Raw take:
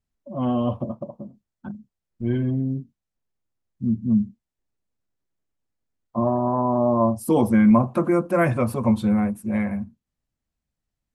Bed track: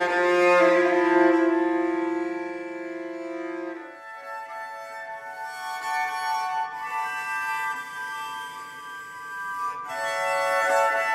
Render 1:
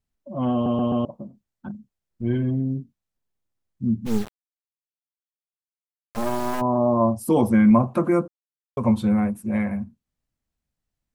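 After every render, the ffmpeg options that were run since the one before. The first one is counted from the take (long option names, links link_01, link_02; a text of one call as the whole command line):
ffmpeg -i in.wav -filter_complex "[0:a]asplit=3[link_01][link_02][link_03];[link_01]afade=type=out:start_time=4.05:duration=0.02[link_04];[link_02]acrusher=bits=3:dc=4:mix=0:aa=0.000001,afade=type=in:start_time=4.05:duration=0.02,afade=type=out:start_time=6.6:duration=0.02[link_05];[link_03]afade=type=in:start_time=6.6:duration=0.02[link_06];[link_04][link_05][link_06]amix=inputs=3:normalize=0,asplit=7[link_07][link_08][link_09][link_10][link_11][link_12][link_13];[link_07]atrim=end=0.662[link_14];[link_08]atrim=start=0.528:end=0.662[link_15];[link_09]atrim=start=0.528:end=0.662[link_16];[link_10]atrim=start=0.528:end=0.662[link_17];[link_11]atrim=start=1.048:end=8.28,asetpts=PTS-STARTPTS,afade=type=out:start_time=7.228:duration=0.004:curve=hsin[link_18];[link_12]atrim=start=8.28:end=8.77,asetpts=PTS-STARTPTS,volume=0[link_19];[link_13]atrim=start=8.77,asetpts=PTS-STARTPTS,afade=type=in:duration=0.004:curve=hsin[link_20];[link_14][link_15]acrossfade=duration=0.004:curve1=hsin:curve2=hsin[link_21];[link_21][link_16]acrossfade=duration=0.004:curve1=hsin:curve2=hsin[link_22];[link_22][link_17]acrossfade=duration=0.004:curve1=hsin:curve2=hsin[link_23];[link_18][link_19][link_20]concat=n=3:v=0:a=1[link_24];[link_23][link_24]acrossfade=duration=0.004:curve1=hsin:curve2=hsin" out.wav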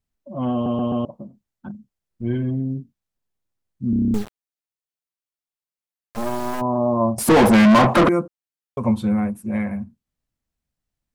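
ffmpeg -i in.wav -filter_complex "[0:a]asettb=1/sr,asplit=3[link_01][link_02][link_03];[link_01]atrim=end=7.184[link_04];[link_02]atrim=start=7.18:end=8.09,asetpts=PTS-STARTPTS,afade=type=in:duration=0.004:curve=qsin,afade=type=out:start_time=0.906:duration=0.004:curve=qsin,asplit=2[link_05][link_06];[link_06]highpass=frequency=720:poles=1,volume=36dB,asoftclip=type=tanh:threshold=-6dB[link_07];[link_05][link_07]amix=inputs=2:normalize=0,lowpass=frequency=2400:poles=1,volume=-6dB[link_08];[link_03]atrim=start=8.086[link_09];[link_04][link_08]acrossfade=duration=0.004:curve1=hsin:curve2=qsin[link_10];[link_10][link_09]acrossfade=duration=0.004:curve1=qsin:curve2=hsin,asplit=9[link_11][link_12][link_13][link_14][link_15][link_16][link_17][link_18][link_19];[link_11]atrim=end=3.932[link_20];[link_12]atrim=start=3.898:end=3.932[link_21];[link_13]atrim=start=3.898:end=3.932[link_22];[link_14]atrim=start=3.898:end=3.932[link_23];[link_15]atrim=start=3.898:end=3.932[link_24];[link_16]atrim=start=3.898:end=3.932[link_25];[link_17]atrim=start=3.898:end=3.932[link_26];[link_18]atrim=start=3.898:end=3.932[link_27];[link_19]atrim=start=4.138[link_28];[link_20][link_21]acrossfade=duration=0.004:curve1=hsin:curve2=hsin[link_29];[link_29][link_22]acrossfade=duration=0.004:curve1=hsin:curve2=hsin[link_30];[link_30][link_23]acrossfade=duration=0.004:curve1=hsin:curve2=hsin[link_31];[link_31][link_24]acrossfade=duration=0.004:curve1=hsin:curve2=hsin[link_32];[link_32][link_25]acrossfade=duration=0.004:curve1=hsin:curve2=hsin[link_33];[link_33][link_26]acrossfade=duration=0.004:curve1=hsin:curve2=hsin[link_34];[link_34][link_27]acrossfade=duration=0.004:curve1=hsin:curve2=hsin[link_35];[link_35][link_28]acrossfade=duration=0.004:curve1=hsin:curve2=hsin" out.wav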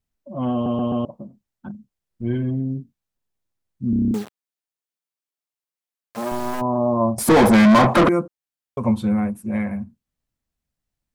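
ffmpeg -i in.wav -filter_complex "[0:a]asettb=1/sr,asplit=3[link_01][link_02][link_03];[link_01]atrim=end=4.114[link_04];[link_02]atrim=start=4.11:end=6.32,asetpts=PTS-STARTPTS,afade=type=in:duration=0.004:curve=qsin,afade=type=out:start_time=2.206:duration=0.004:curve=qsin,highpass=170[link_05];[link_03]atrim=start=6.316[link_06];[link_04][link_05]acrossfade=duration=0.004:curve1=hsin:curve2=qsin[link_07];[link_07][link_06]acrossfade=duration=0.004:curve1=qsin:curve2=hsin,asettb=1/sr,asplit=3[link_08][link_09][link_10];[link_08]atrim=end=7.054[link_11];[link_09]atrim=start=7.05:end=7.96,asetpts=PTS-STARTPTS,afade=type=in:duration=0.004:curve=qsin,afade=type=out:start_time=0.906:duration=0.004:curve=qsin,bandreject=frequency=2800:width=12[link_12];[link_10]atrim=start=7.956[link_13];[link_11][link_12]acrossfade=duration=0.004:curve1=hsin:curve2=qsin[link_14];[link_14][link_13]acrossfade=duration=0.004:curve1=qsin:curve2=hsin" out.wav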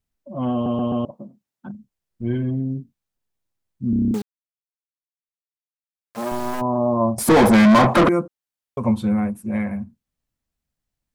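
ffmpeg -i in.wav -filter_complex "[0:a]asettb=1/sr,asplit=3[link_01][link_02][link_03];[link_01]atrim=end=1.114[link_04];[link_02]atrim=start=1.11:end=1.69,asetpts=PTS-STARTPTS,afade=type=in:duration=0.004:curve=qsin,afade=type=out:start_time=0.576:duration=0.004:curve=qsin,highpass=150[link_05];[link_03]atrim=start=1.686[link_06];[link_04][link_05]acrossfade=duration=0.004:curve1=hsin:curve2=qsin[link_07];[link_07][link_06]acrossfade=duration=0.004:curve1=qsin:curve2=hsin,asplit=2[link_08][link_09];[link_08]atrim=end=4.22,asetpts=PTS-STARTPTS,afade=type=out:start_time=4.216:duration=0.004:curve=hsin[link_10];[link_09]atrim=start=4.22,asetpts=PTS-STARTPTS,afade=type=in:duration=1.98:curve=exp[link_11];[link_10][link_11]concat=n=2:v=0:a=1" out.wav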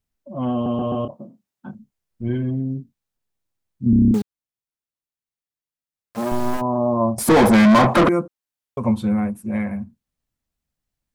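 ffmpeg -i in.wav -filter_complex "[0:a]asettb=1/sr,asplit=3[link_01][link_02][link_03];[link_01]atrim=end=0.784[link_04];[link_02]atrim=start=0.78:end=2.29,asetpts=PTS-STARTPTS,afade=type=in:duration=0.004:curve=qsin,afade=type=out:start_time=1.506:duration=0.004:curve=qsin,asplit=2[link_05][link_06];[link_06]adelay=27,volume=-6.5dB[link_07];[link_05][link_07]amix=inputs=2:normalize=0,atrim=end_sample=66591[link_08];[link_03]atrim=start=2.286[link_09];[link_04][link_08]acrossfade=duration=0.004:curve1=hsin:curve2=qsin[link_10];[link_10][link_09]acrossfade=duration=0.004:curve1=qsin:curve2=hsin,asettb=1/sr,asplit=3[link_11][link_12][link_13];[link_11]atrim=end=3.864[link_14];[link_12]atrim=start=3.86:end=6.57,asetpts=PTS-STARTPTS,afade=type=in:duration=0.004:curve=qsin,afade=type=out:start_time=2.706:duration=0.004:curve=qsin,lowshelf=frequency=270:gain=8.5[link_15];[link_13]atrim=start=6.566[link_16];[link_14][link_15]acrossfade=duration=0.004:curve1=hsin:curve2=qsin[link_17];[link_17][link_16]acrossfade=duration=0.004:curve1=qsin:curve2=hsin" out.wav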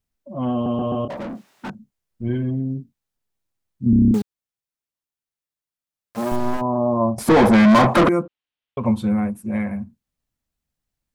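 ffmpeg -i in.wav -filter_complex "[0:a]asettb=1/sr,asplit=3[link_01][link_02][link_03];[link_01]atrim=end=1.104[link_04];[link_02]atrim=start=1.1:end=1.7,asetpts=PTS-STARTPTS,afade=type=in:duration=0.004:curve=qsin,afade=type=out:start_time=0.596:duration=0.004:curve=qsin,asplit=2[link_05][link_06];[link_06]highpass=frequency=720:poles=1,volume=41dB,asoftclip=type=tanh:threshold=-23dB[link_07];[link_05][link_07]amix=inputs=2:normalize=0,lowpass=frequency=2000:poles=1,volume=-6dB[link_08];[link_03]atrim=start=1.696[link_09];[link_04][link_08]acrossfade=duration=0.004:curve1=hsin:curve2=qsin[link_10];[link_10][link_09]acrossfade=duration=0.004:curve1=qsin:curve2=hsin,asettb=1/sr,asplit=3[link_11][link_12][link_13];[link_11]atrim=end=6.364[link_14];[link_12]atrim=start=6.36:end=7.68,asetpts=PTS-STARTPTS,afade=type=in:duration=0.004:curve=qsin,afade=type=out:start_time=1.316:duration=0.004:curve=qsin,highshelf=frequency=7000:gain=-11[link_15];[link_13]atrim=start=7.676[link_16];[link_14][link_15]acrossfade=duration=0.004:curve1=hsin:curve2=qsin[link_17];[link_17][link_16]acrossfade=duration=0.004:curve1=qsin:curve2=hsin,asettb=1/sr,asplit=3[link_18][link_19][link_20];[link_18]atrim=end=8.224[link_21];[link_19]atrim=start=8.22:end=8.86,asetpts=PTS-STARTPTS,afade=type=in:duration=0.004:curve=qsin,afade=type=out:start_time=0.636:duration=0.004:curve=qsin,lowpass=frequency=3100:width_type=q:width=2.5[link_22];[link_20]atrim=start=8.856[link_23];[link_21][link_22]acrossfade=duration=0.004:curve1=hsin:curve2=qsin[link_24];[link_24][link_23]acrossfade=duration=0.004:curve1=qsin:curve2=hsin" out.wav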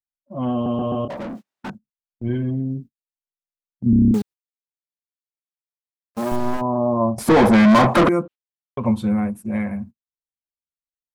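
ffmpeg -i in.wav -af "agate=range=-29dB:threshold=-36dB:ratio=16:detection=peak" out.wav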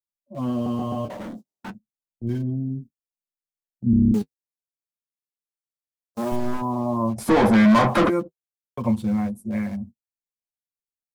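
ffmpeg -i in.wav -filter_complex "[0:a]acrossover=split=330|850|4400[link_01][link_02][link_03][link_04];[link_03]aeval=exprs='val(0)*gte(abs(val(0)),0.00668)':channel_layout=same[link_05];[link_01][link_02][link_05][link_04]amix=inputs=4:normalize=0,flanger=delay=8.4:depth=1.5:regen=-32:speed=0.33:shape=sinusoidal" out.wav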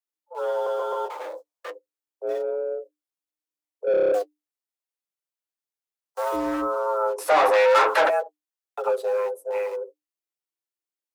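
ffmpeg -i in.wav -filter_complex "[0:a]afreqshift=300,acrossover=split=520[link_01][link_02];[link_01]asoftclip=type=tanh:threshold=-27.5dB[link_03];[link_03][link_02]amix=inputs=2:normalize=0" out.wav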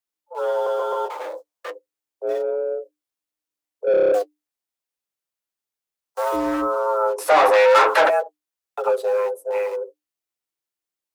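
ffmpeg -i in.wav -af "volume=3.5dB" out.wav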